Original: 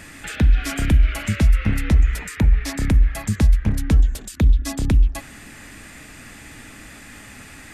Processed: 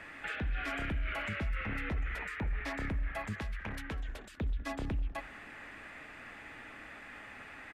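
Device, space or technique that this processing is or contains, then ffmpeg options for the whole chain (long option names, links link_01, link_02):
DJ mixer with the lows and highs turned down: -filter_complex "[0:a]acrossover=split=400 2900:gain=0.224 1 0.0794[link_01][link_02][link_03];[link_01][link_02][link_03]amix=inputs=3:normalize=0,alimiter=level_in=0.5dB:limit=-24dB:level=0:latency=1:release=13,volume=-0.5dB,asettb=1/sr,asplit=3[link_04][link_05][link_06];[link_04]atrim=end=3.384[link_07];[link_05]atrim=start=3.38:end=4.09,asetpts=PTS-STARTPTS,afade=type=in:duration=0.004:curve=qsin,afade=type=out:start_time=0.706:duration=0.004:curve=qsin,tiltshelf=frequency=850:gain=-5[link_08];[link_06]atrim=start=4.086[link_09];[link_07][link_08]acrossfade=duration=0.004:curve1=hsin:curve2=qsin[link_10];[link_10][link_09]acrossfade=duration=0.004:curve1=qsin:curve2=hsin,asplit=2[link_11][link_12];[link_12]adelay=198.3,volume=-21dB,highshelf=frequency=4000:gain=-4.46[link_13];[link_11][link_13]amix=inputs=2:normalize=0,volume=-3.5dB"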